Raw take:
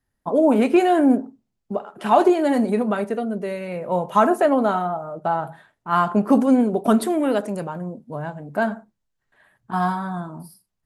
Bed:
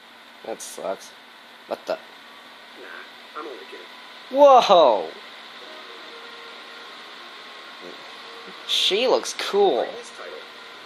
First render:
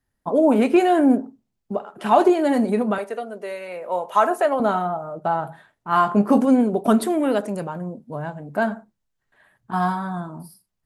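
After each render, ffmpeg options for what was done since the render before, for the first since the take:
-filter_complex "[0:a]asettb=1/sr,asplit=3[s0][s1][s2];[s0]atrim=end=2.984[s3];[s1]atrim=start=2.98:end=4.6,asetpts=PTS-STARTPTS,afade=t=in:d=0.004:c=qsin,afade=t=out:st=1.616:d=0.004:c=qsin,highpass=490[s4];[s2]atrim=start=4.596[s5];[s3][s4]acrossfade=d=0.004:c1=hsin:c2=qsin[s6];[s6][s5]acrossfade=d=0.004:c1=qsin:c2=hsin,asettb=1/sr,asplit=3[s7][s8][s9];[s7]atrim=end=5.904[s10];[s8]atrim=start=5.9:end=6.45,asetpts=PTS-STARTPTS,afade=t=in:d=0.004:c=qsin,afade=t=out:st=0.546:d=0.004:c=qsin,asplit=2[s11][s12];[s12]adelay=20,volume=0.422[s13];[s11][s13]amix=inputs=2:normalize=0,atrim=end_sample=24255[s14];[s9]atrim=start=6.446[s15];[s10][s14]acrossfade=d=0.004:c1=hsin:c2=qsin[s16];[s16][s15]acrossfade=d=0.004:c1=qsin:c2=hsin"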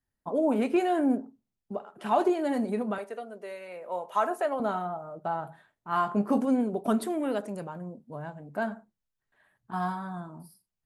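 -af "volume=0.355"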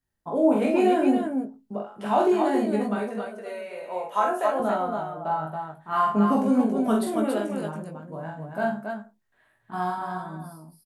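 -filter_complex "[0:a]asplit=2[s0][s1];[s1]adelay=19,volume=0.631[s2];[s0][s2]amix=inputs=2:normalize=0,aecho=1:1:44|88|278:0.708|0.2|0.596"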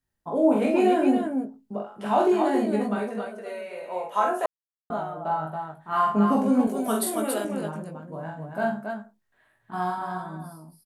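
-filter_complex "[0:a]asettb=1/sr,asplit=3[s0][s1][s2];[s0]atrim=end=6.674[s3];[s1]atrim=start=6.67:end=7.45,asetpts=PTS-STARTPTS,afade=t=in:d=0.004:c=qsin,afade=t=out:st=0.776:d=0.004:c=qsin,aemphasis=mode=production:type=bsi[s4];[s2]atrim=start=7.446[s5];[s3][s4]acrossfade=d=0.004:c1=hsin:c2=qsin[s6];[s6][s5]acrossfade=d=0.004:c1=qsin:c2=hsin,asplit=3[s7][s8][s9];[s7]atrim=end=4.46,asetpts=PTS-STARTPTS,afade=t=out:st=4.456:d=0.004:c=hsin[s10];[s8]atrim=start=4.46:end=4.9,asetpts=PTS-STARTPTS,volume=0[s11];[s9]atrim=start=4.9,asetpts=PTS-STARTPTS,afade=t=in:d=0.004:c=hsin[s12];[s10][s11][s12]concat=n=3:v=0:a=1"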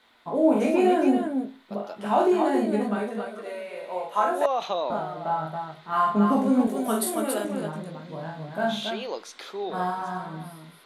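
-filter_complex "[1:a]volume=0.2[s0];[0:a][s0]amix=inputs=2:normalize=0"

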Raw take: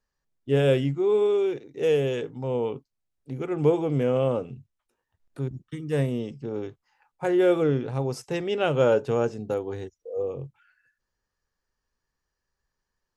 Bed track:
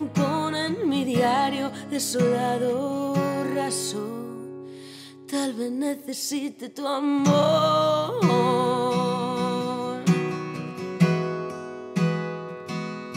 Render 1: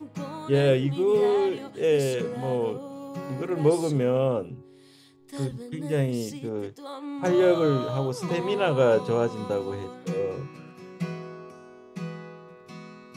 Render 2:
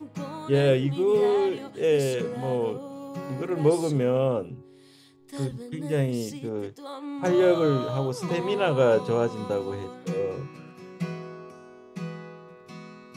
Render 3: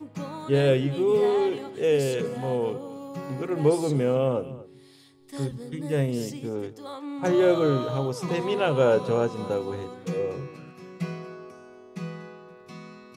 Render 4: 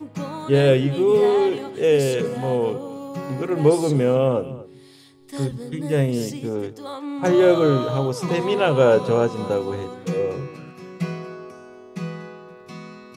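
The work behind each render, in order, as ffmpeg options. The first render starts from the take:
-filter_complex "[1:a]volume=0.251[s0];[0:a][s0]amix=inputs=2:normalize=0"
-af anull
-af "aecho=1:1:240:0.126"
-af "volume=1.78"

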